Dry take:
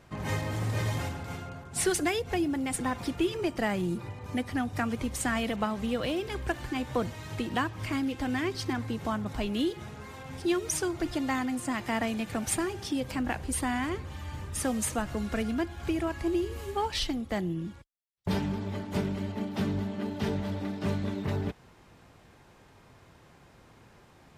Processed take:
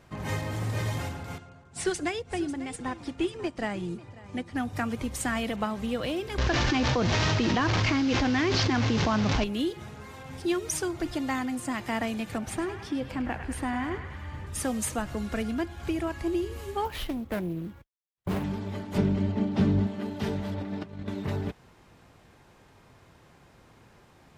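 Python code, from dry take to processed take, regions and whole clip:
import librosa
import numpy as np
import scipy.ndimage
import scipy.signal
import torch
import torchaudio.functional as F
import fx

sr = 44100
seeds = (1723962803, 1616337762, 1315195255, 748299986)

y = fx.chain(x, sr, fx.lowpass(hz=9100.0, slope=24),
    fx.echo_single(ms=544, db=-14.0),
    fx.upward_expand(threshold_db=-41.0, expansion=1.5), at=(1.38, 4.56))
y = fx.chain(y, sr, fx.delta_mod(bps=32000, step_db=-35.0),
    fx.env_flatten(amount_pct=100), at=(6.38, 9.44))
y = fx.chain(y, sr, fx.high_shelf(hz=3600.0, db=-11.5),
    fx.echo_banded(ms=102, feedback_pct=72, hz=1900.0, wet_db=-6.0), at=(12.38, 14.47))
y = fx.chain(y, sr, fx.median_filter(points=9),
    fx.resample_bad(factor=3, down='none', up='hold'),
    fx.doppler_dist(depth_ms=0.55), at=(16.85, 18.44))
y = fx.chain(y, sr, fx.lowpass(hz=6700.0, slope=12),
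    fx.low_shelf(hz=500.0, db=8.0), at=(18.98, 19.87))
y = fx.chain(y, sr, fx.lowpass(hz=3500.0, slope=6),
    fx.over_compress(threshold_db=-35.0, ratio=-0.5), at=(20.54, 21.08))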